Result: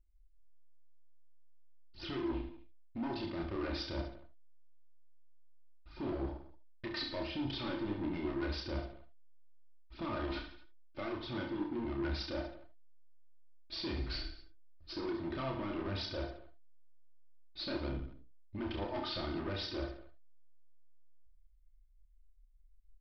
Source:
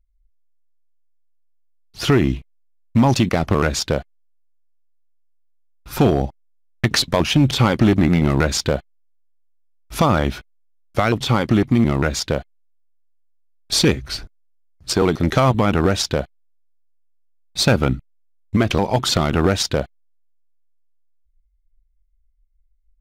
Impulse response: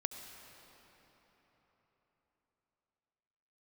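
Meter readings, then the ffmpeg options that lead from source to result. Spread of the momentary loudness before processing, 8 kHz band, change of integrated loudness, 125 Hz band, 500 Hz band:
10 LU, under -35 dB, -21.0 dB, -24.5 dB, -20.0 dB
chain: -filter_complex "[0:a]aphaser=in_gain=1:out_gain=1:delay=3.8:decay=0.45:speed=1.5:type=triangular,equalizer=f=340:t=o:w=0.22:g=11.5,areverse,acompressor=threshold=-22dB:ratio=12,areverse,aecho=1:1:3.3:0.58,aresample=11025,asoftclip=type=tanh:threshold=-24dB,aresample=44100,aecho=1:1:30|67.5|114.4|173|246.2:0.631|0.398|0.251|0.158|0.1[a];[1:a]atrim=start_sample=2205,atrim=end_sample=6174,asetrate=74970,aresample=44100[b];[a][b]afir=irnorm=-1:irlink=0,volume=-6dB"

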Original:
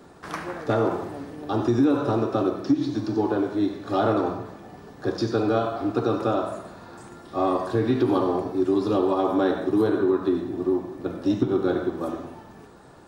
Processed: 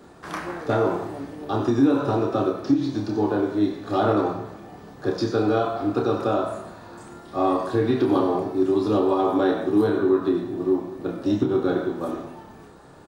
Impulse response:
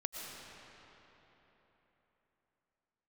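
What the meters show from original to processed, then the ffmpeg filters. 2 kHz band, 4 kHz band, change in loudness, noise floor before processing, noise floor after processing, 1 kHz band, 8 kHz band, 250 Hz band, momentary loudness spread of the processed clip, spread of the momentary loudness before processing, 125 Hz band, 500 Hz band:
+1.5 dB, +1.0 dB, +1.5 dB, -47 dBFS, -46 dBFS, +1.5 dB, n/a, +1.0 dB, 14 LU, 14 LU, +0.5 dB, +1.5 dB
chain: -filter_complex "[0:a]bandreject=f=5.4k:w=29,asplit=2[a][b];[b]adelay=29,volume=-5dB[c];[a][c]amix=inputs=2:normalize=0"

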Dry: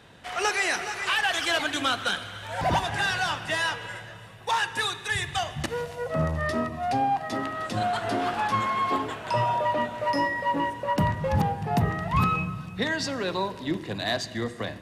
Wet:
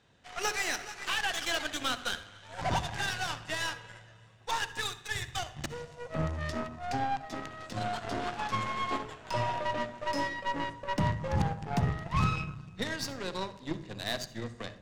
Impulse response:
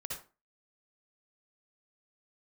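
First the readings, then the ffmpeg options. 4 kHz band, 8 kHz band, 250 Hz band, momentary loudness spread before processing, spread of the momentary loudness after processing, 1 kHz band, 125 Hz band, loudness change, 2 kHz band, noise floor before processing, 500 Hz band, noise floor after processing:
-5.5 dB, -3.0 dB, -7.0 dB, 7 LU, 9 LU, -8.0 dB, -4.5 dB, -7.0 dB, -7.5 dB, -42 dBFS, -8.0 dB, -54 dBFS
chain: -filter_complex "[0:a]lowpass=f=6.9k:t=q:w=1.7,aeval=exprs='0.237*(cos(1*acos(clip(val(0)/0.237,-1,1)))-cos(1*PI/2))+0.015*(cos(3*acos(clip(val(0)/0.237,-1,1)))-cos(3*PI/2))+0.00841*(cos(5*acos(clip(val(0)/0.237,-1,1)))-cos(5*PI/2))+0.015*(cos(6*acos(clip(val(0)/0.237,-1,1)))-cos(6*PI/2))+0.0211*(cos(7*acos(clip(val(0)/0.237,-1,1)))-cos(7*PI/2))':c=same,asplit=2[a][b];[1:a]atrim=start_sample=2205,lowshelf=f=380:g=11[c];[b][c]afir=irnorm=-1:irlink=0,volume=-12dB[d];[a][d]amix=inputs=2:normalize=0,volume=-7.5dB"

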